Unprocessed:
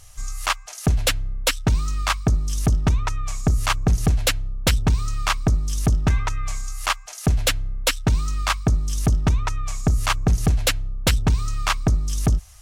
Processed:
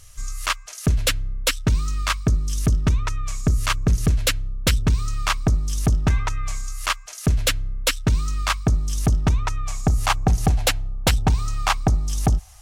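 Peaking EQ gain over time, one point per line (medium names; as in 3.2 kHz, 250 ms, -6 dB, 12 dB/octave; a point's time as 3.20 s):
peaking EQ 790 Hz 0.44 oct
4.92 s -10 dB
5.41 s -0.5 dB
6.36 s -0.5 dB
6.79 s -7.5 dB
8.17 s -7.5 dB
8.78 s +1 dB
9.55 s +1 dB
10.12 s +9 dB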